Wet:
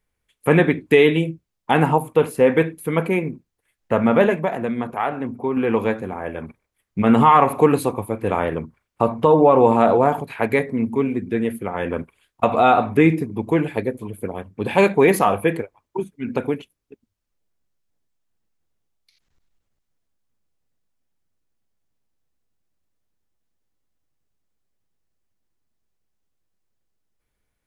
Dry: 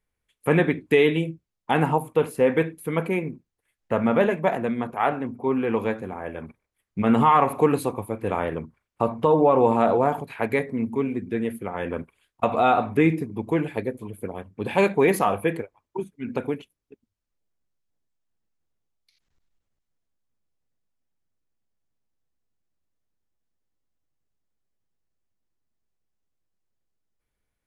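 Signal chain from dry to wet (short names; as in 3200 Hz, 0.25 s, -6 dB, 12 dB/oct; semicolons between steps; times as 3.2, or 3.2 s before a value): 4.35–5.57 compressor 2.5:1, threshold -25 dBFS, peak gain reduction 6.5 dB; gain +4.5 dB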